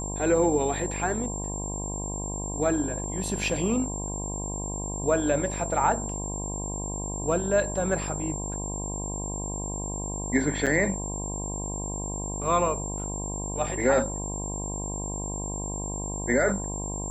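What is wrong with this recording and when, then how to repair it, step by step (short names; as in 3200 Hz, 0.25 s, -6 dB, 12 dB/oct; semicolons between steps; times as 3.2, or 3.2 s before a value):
buzz 50 Hz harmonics 21 -34 dBFS
tone 7400 Hz -34 dBFS
10.66–10.67 gap 7.3 ms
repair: de-hum 50 Hz, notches 21; notch 7400 Hz, Q 30; interpolate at 10.66, 7.3 ms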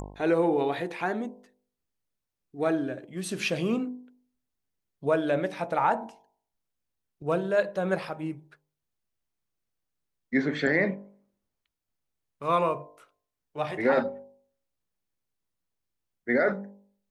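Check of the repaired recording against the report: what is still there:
none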